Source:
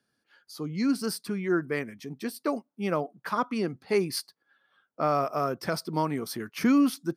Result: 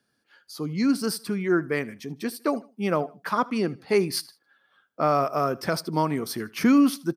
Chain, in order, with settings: feedback echo 78 ms, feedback 35%, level -22 dB; gain +3.5 dB

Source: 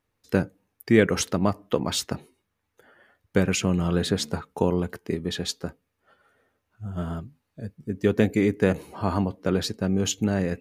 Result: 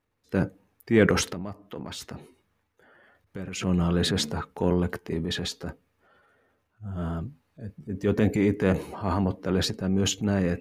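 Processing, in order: high shelf 3800 Hz -6.5 dB; 1.23–3.56 compressor 12:1, threshold -31 dBFS, peak gain reduction 16 dB; transient shaper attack -6 dB, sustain +7 dB

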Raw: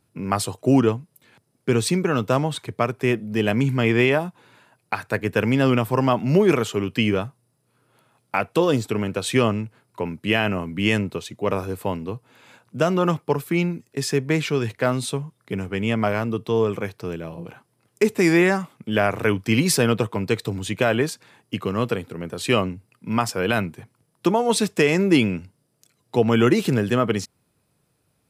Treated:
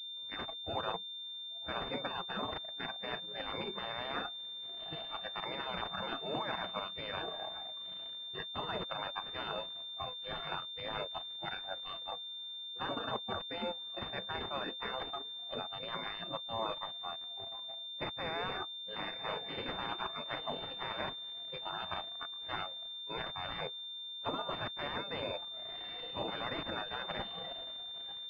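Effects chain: spectral gate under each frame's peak -20 dB weak; on a send: diffused feedback echo 1.017 s, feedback 57%, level -10 dB; on the sum: spectral noise reduction 17 dB; low shelf 250 Hz +6 dB; sample leveller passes 2; reverse; compressor 6:1, threshold -34 dBFS, peak gain reduction 14.5 dB; reverse; pulse-width modulation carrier 3600 Hz; gain +1 dB

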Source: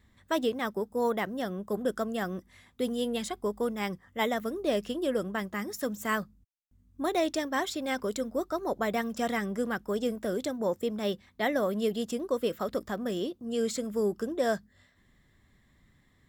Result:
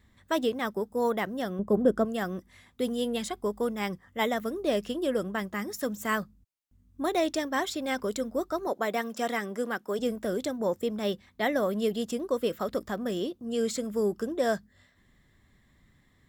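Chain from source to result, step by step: 1.59–2.05 tilt shelf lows +8 dB, about 1200 Hz; 8.67–9.99 HPF 260 Hz 12 dB/oct; gain +1 dB

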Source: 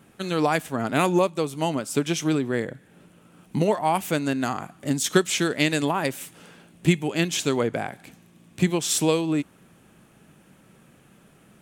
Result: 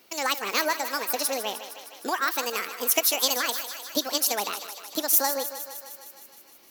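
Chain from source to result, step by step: tilt +3 dB/oct; thinning echo 0.267 s, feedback 71%, high-pass 190 Hz, level -11.5 dB; speed mistake 45 rpm record played at 78 rpm; gain -2.5 dB

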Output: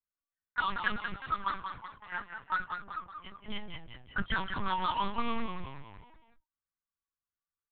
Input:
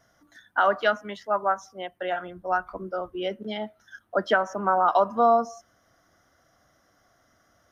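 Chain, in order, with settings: Chebyshev band-stop 250–930 Hz, order 4; power-law curve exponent 0.5; gate -25 dBFS, range -52 dB; envelope flanger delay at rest 2.6 ms, full sweep at -16.5 dBFS; low-pass opened by the level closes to 1300 Hz, open at -18 dBFS; frequency-shifting echo 0.187 s, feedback 46%, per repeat -45 Hz, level -6.5 dB; LPC vocoder at 8 kHz pitch kept; gain -5 dB

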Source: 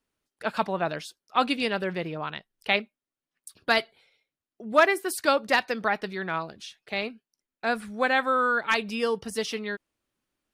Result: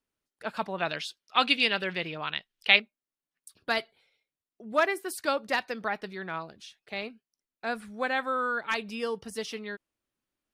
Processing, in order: 0.78–2.8 bell 3100 Hz +12.5 dB 2 oct; gain -5.5 dB

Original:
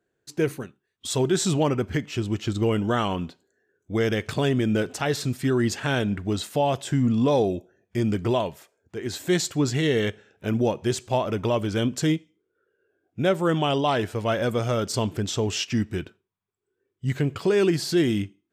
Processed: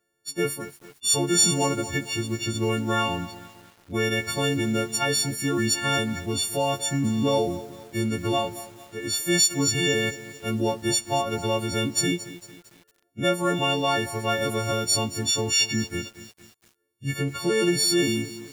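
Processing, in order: frequency quantiser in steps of 4 st; lo-fi delay 0.226 s, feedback 55%, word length 6-bit, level -14.5 dB; gain -2.5 dB

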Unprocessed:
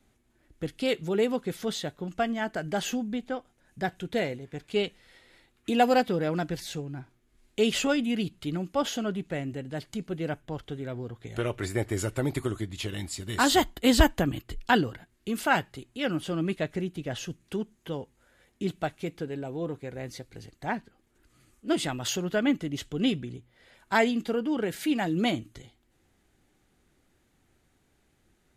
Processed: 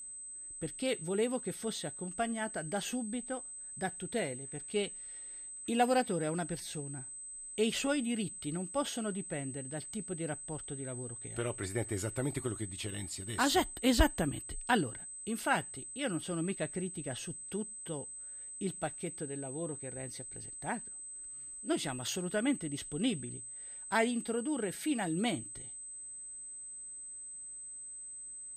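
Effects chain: whine 8200 Hz -37 dBFS; gain -6.5 dB

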